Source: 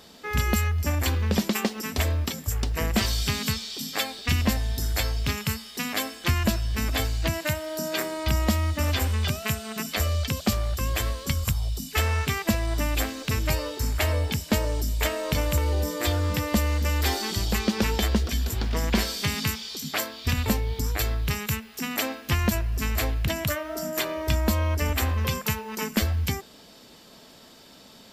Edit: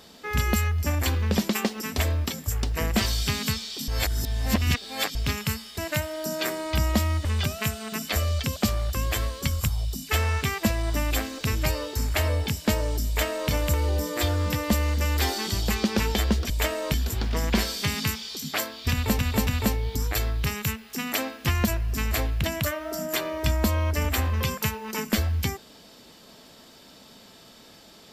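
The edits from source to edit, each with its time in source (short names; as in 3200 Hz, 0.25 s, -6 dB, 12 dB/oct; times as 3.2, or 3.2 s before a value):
3.88–5.15 reverse
5.78–7.31 cut
8.78–9.09 cut
14.91–15.35 copy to 18.34
20.31–20.59 loop, 3 plays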